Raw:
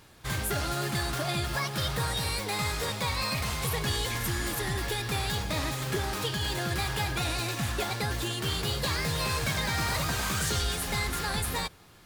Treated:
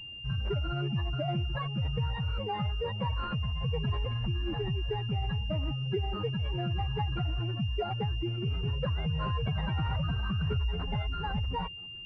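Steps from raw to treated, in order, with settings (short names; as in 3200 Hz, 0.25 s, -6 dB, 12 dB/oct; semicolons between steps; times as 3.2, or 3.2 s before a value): spectral contrast raised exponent 2.5; pulse-width modulation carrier 2800 Hz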